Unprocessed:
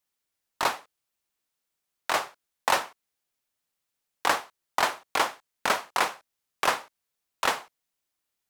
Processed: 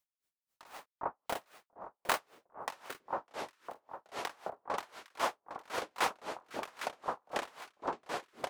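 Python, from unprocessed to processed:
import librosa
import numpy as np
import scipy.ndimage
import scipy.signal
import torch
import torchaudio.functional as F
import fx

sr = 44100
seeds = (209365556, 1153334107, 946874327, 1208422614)

y = fx.self_delay(x, sr, depth_ms=0.051)
y = fx.echo_pitch(y, sr, ms=484, semitones=-5, count=3, db_per_echo=-6.0)
y = fx.sample_hold(y, sr, seeds[0], rate_hz=11000.0, jitter_pct=0, at=(0.66, 2.19))
y = fx.echo_alternate(y, sr, ms=404, hz=1200.0, feedback_pct=51, wet_db=-6.0)
y = y * 10.0 ** (-34 * (0.5 - 0.5 * np.cos(2.0 * np.pi * 3.8 * np.arange(len(y)) / sr)) / 20.0)
y = y * 10.0 ** (-1.5 / 20.0)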